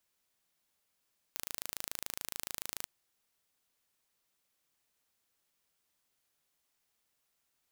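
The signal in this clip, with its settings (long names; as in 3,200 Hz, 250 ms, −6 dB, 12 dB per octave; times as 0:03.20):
impulse train 27 per second, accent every 0, −10.5 dBFS 1.49 s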